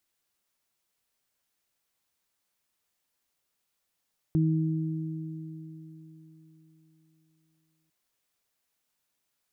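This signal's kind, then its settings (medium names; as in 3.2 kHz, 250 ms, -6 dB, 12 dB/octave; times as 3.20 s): additive tone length 3.55 s, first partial 159 Hz, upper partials -5 dB, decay 3.83 s, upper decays 3.95 s, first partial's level -21 dB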